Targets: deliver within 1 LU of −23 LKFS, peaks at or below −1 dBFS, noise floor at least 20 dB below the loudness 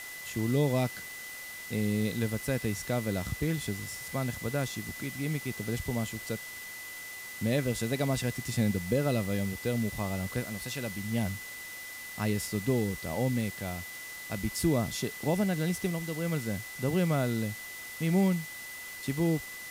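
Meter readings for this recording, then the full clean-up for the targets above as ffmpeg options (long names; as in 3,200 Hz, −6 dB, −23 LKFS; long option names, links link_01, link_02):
interfering tone 2,000 Hz; level of the tone −42 dBFS; background noise floor −43 dBFS; target noise floor −52 dBFS; integrated loudness −32.0 LKFS; sample peak −15.5 dBFS; target loudness −23.0 LKFS
→ -af "bandreject=frequency=2000:width=30"
-af "afftdn=noise_reduction=9:noise_floor=-43"
-af "volume=9dB"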